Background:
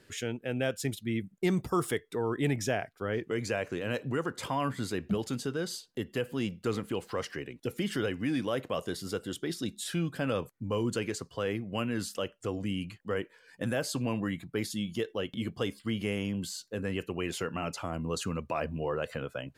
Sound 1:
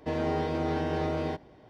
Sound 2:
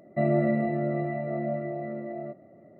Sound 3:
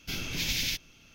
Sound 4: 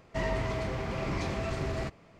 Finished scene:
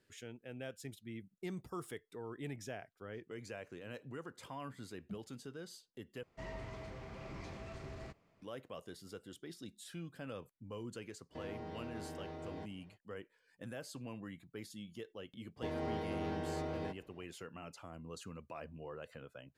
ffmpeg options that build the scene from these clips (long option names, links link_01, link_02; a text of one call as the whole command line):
ffmpeg -i bed.wav -i cue0.wav -i cue1.wav -i cue2.wav -i cue3.wav -filter_complex "[1:a]asplit=2[link_01][link_02];[0:a]volume=-15dB[link_03];[link_01]acompressor=threshold=-31dB:ratio=6:attack=3.2:release=140:knee=1:detection=peak[link_04];[link_03]asplit=2[link_05][link_06];[link_05]atrim=end=6.234[link_07];[4:a]atrim=end=2.19,asetpts=PTS-STARTPTS,volume=-15dB[link_08];[link_06]atrim=start=8.416[link_09];[link_04]atrim=end=1.69,asetpts=PTS-STARTPTS,volume=-11.5dB,afade=type=in:duration=0.05,afade=type=out:start_time=1.64:duration=0.05,adelay=11290[link_10];[link_02]atrim=end=1.69,asetpts=PTS-STARTPTS,volume=-10dB,afade=type=in:duration=0.004:curve=hsin,afade=type=out:start_time=1.686:duration=0.004:curve=hsin,adelay=686196S[link_11];[link_07][link_08]acrossfade=duration=0.004:curve1=hsin:curve2=hsin[link_12];[link_12][link_09]acrossfade=duration=0.004:curve1=hsin:curve2=hsin[link_13];[link_13][link_10][link_11]amix=inputs=3:normalize=0" out.wav